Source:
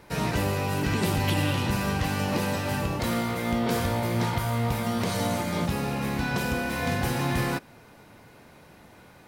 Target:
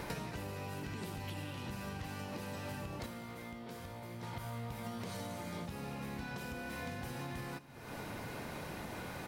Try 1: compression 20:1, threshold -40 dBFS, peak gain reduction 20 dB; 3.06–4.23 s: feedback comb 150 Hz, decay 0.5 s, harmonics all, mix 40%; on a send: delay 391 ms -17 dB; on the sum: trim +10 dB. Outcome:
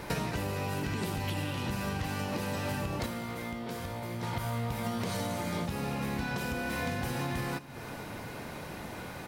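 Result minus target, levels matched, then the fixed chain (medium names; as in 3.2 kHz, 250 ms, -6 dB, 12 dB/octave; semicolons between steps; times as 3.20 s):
compression: peak gain reduction -9 dB
compression 20:1, threshold -49.5 dBFS, peak gain reduction 29 dB; 3.06–4.23 s: feedback comb 150 Hz, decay 0.5 s, harmonics all, mix 40%; on a send: delay 391 ms -17 dB; on the sum: trim +10 dB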